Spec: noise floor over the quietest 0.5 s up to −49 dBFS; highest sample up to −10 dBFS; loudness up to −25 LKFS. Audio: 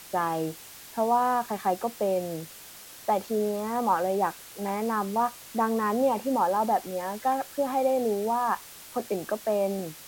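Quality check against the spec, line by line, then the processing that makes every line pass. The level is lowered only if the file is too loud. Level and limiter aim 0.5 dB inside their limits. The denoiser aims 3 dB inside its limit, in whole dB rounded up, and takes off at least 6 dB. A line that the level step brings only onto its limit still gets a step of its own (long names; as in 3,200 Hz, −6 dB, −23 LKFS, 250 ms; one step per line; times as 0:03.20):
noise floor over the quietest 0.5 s −46 dBFS: out of spec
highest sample −12.0 dBFS: in spec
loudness −28.0 LKFS: in spec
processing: broadband denoise 6 dB, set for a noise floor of −46 dBFS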